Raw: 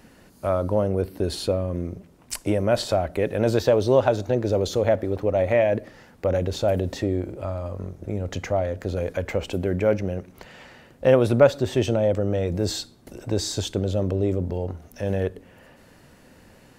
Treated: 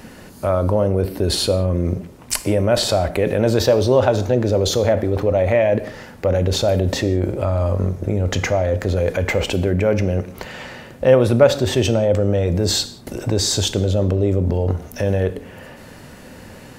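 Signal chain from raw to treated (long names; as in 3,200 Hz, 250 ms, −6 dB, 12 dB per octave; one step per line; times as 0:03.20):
in parallel at −1.5 dB: compressor whose output falls as the input rises −31 dBFS, ratio −1
on the sum: convolution reverb, pre-delay 3 ms, DRR 11.5 dB
level +2.5 dB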